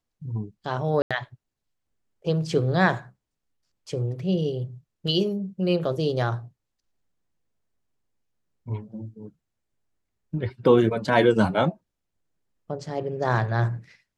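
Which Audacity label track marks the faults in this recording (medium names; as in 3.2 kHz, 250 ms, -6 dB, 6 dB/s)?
1.020000	1.110000	dropout 86 ms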